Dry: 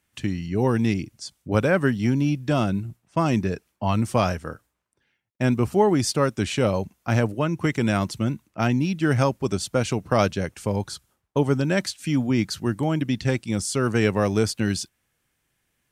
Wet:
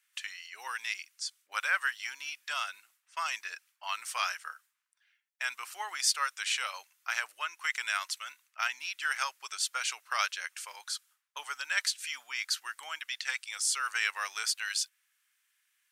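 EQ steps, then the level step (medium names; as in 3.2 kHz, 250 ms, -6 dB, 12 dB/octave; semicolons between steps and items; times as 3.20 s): high-pass 1.3 kHz 24 dB/octave; 0.0 dB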